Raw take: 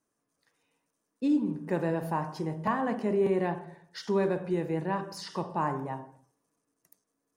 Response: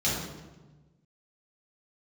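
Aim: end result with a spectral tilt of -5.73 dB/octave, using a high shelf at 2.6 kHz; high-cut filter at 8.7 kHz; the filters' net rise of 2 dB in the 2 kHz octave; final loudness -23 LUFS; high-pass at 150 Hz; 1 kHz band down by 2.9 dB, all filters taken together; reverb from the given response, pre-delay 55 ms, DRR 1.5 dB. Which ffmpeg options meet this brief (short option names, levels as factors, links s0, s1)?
-filter_complex "[0:a]highpass=150,lowpass=8700,equalizer=f=1000:t=o:g=-4,equalizer=f=2000:t=o:g=5,highshelf=f=2600:g=-3,asplit=2[s0][s1];[1:a]atrim=start_sample=2205,adelay=55[s2];[s1][s2]afir=irnorm=-1:irlink=0,volume=0.237[s3];[s0][s3]amix=inputs=2:normalize=0,volume=1.68"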